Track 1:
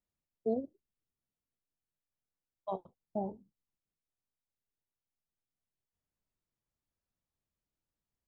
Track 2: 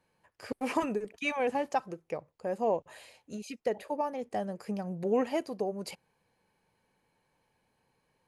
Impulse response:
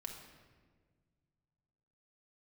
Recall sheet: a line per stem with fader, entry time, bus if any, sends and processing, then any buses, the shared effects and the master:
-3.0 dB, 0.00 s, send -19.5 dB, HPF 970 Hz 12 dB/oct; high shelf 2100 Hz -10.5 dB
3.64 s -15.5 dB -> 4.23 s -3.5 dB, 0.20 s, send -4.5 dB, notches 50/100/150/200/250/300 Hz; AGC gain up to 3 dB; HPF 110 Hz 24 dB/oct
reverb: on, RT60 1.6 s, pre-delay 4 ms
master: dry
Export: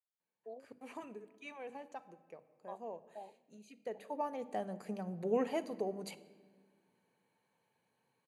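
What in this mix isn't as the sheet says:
stem 2 -15.5 dB -> -22.5 dB; master: extra Butterworth band-stop 5200 Hz, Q 6.5

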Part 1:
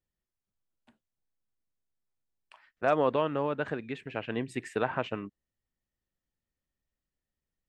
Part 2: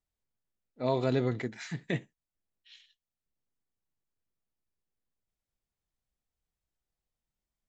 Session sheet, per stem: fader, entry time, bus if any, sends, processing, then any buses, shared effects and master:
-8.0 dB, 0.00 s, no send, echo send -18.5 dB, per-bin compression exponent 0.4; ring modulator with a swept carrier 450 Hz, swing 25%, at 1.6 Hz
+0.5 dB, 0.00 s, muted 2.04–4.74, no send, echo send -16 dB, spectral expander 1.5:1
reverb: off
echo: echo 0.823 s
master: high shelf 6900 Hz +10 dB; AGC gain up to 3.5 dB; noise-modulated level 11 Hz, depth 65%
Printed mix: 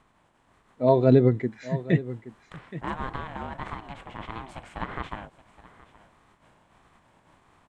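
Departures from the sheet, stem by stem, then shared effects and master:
stem 2 +0.5 dB -> +10.0 dB; master: missing high shelf 6900 Hz +10 dB

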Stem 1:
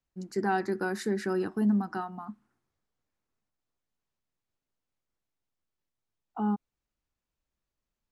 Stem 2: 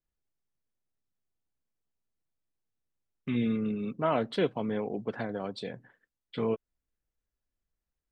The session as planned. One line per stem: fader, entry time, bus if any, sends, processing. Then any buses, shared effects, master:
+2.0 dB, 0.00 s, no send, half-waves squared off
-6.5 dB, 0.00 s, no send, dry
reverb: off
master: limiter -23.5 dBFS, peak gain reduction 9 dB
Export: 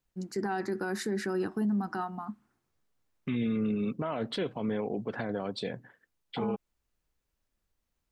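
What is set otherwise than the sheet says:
stem 1: missing half-waves squared off; stem 2 -6.5 dB -> +3.5 dB

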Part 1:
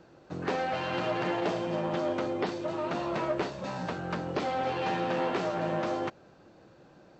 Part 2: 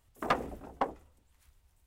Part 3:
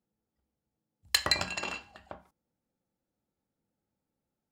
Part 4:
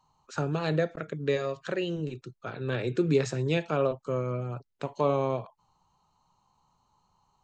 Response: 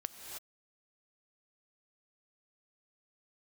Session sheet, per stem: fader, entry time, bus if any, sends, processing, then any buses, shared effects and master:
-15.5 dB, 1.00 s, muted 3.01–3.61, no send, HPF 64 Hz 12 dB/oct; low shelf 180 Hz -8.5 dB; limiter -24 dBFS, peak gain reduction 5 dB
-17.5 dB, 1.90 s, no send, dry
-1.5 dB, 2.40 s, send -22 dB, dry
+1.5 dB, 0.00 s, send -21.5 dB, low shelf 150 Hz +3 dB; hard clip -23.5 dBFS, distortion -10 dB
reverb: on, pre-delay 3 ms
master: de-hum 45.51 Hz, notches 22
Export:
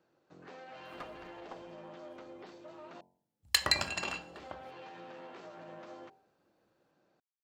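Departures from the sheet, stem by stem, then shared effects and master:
stem 1: entry 1.00 s -> 0.00 s; stem 2: entry 1.90 s -> 0.70 s; stem 4: muted

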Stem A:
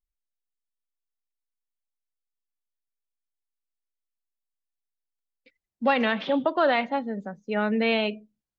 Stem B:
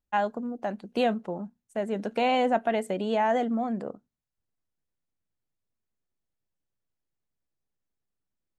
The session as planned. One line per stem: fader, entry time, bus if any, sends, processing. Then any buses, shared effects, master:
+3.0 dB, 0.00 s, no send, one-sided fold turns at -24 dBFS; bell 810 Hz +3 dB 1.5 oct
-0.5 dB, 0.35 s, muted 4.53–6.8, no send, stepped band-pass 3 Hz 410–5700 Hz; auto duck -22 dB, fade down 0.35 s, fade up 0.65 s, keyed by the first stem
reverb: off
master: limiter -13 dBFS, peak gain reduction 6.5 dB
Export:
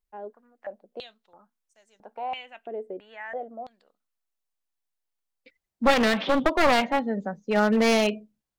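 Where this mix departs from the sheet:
stem B: entry 0.35 s -> 0.00 s; master: missing limiter -13 dBFS, peak gain reduction 6.5 dB

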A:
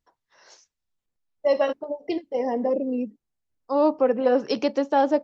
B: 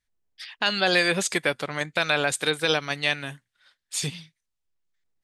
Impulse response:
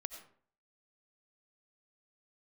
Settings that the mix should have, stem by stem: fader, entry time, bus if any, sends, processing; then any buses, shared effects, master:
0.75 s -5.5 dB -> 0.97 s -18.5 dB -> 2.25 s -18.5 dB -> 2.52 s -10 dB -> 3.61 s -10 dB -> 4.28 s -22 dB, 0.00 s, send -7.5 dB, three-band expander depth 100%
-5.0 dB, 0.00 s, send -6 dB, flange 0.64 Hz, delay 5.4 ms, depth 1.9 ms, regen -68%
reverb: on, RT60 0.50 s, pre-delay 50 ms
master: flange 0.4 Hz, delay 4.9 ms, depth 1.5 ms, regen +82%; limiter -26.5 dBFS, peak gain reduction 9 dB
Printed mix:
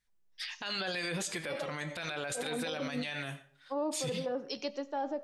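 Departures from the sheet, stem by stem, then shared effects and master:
stem A -5.5 dB -> +6.0 dB; stem B -5.0 dB -> +6.0 dB

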